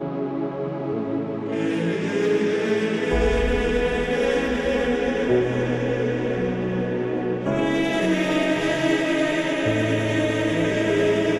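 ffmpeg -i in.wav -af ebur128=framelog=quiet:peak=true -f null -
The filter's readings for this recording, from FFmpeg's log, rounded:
Integrated loudness:
  I:         -22.6 LUFS
  Threshold: -32.6 LUFS
Loudness range:
  LRA:         1.7 LU
  Threshold: -42.5 LUFS
  LRA low:   -23.3 LUFS
  LRA high:  -21.6 LUFS
True peak:
  Peak:       -9.1 dBFS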